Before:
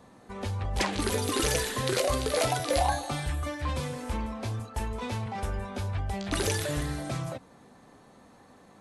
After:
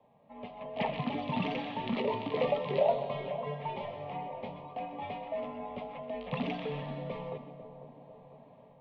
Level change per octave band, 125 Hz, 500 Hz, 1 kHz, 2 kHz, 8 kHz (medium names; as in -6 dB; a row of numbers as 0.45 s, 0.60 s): -10.0 dB, -1.5 dB, -3.5 dB, -8.5 dB, under -40 dB